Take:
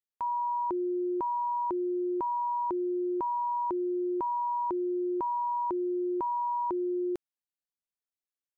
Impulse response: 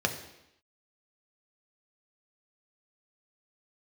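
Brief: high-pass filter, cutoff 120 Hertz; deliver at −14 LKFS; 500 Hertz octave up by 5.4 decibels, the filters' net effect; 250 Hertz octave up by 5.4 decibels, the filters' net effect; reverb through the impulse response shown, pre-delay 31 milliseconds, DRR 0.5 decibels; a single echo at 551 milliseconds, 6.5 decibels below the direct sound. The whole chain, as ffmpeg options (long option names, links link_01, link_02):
-filter_complex "[0:a]highpass=120,equalizer=frequency=250:width_type=o:gain=7,equalizer=frequency=500:width_type=o:gain=4,aecho=1:1:551:0.473,asplit=2[link_01][link_02];[1:a]atrim=start_sample=2205,adelay=31[link_03];[link_02][link_03]afir=irnorm=-1:irlink=0,volume=-10dB[link_04];[link_01][link_04]amix=inputs=2:normalize=0,volume=9.5dB"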